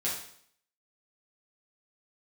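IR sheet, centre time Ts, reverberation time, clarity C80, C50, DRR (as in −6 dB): 40 ms, 0.60 s, 7.5 dB, 3.5 dB, −7.0 dB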